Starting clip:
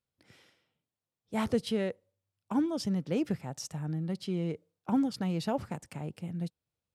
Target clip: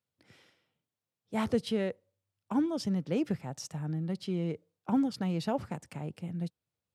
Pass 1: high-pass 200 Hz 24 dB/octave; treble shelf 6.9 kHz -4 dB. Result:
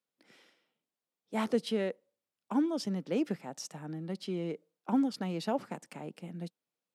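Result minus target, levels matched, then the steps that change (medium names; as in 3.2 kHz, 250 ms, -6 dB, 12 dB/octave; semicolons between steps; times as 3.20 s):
125 Hz band -5.0 dB
change: high-pass 71 Hz 24 dB/octave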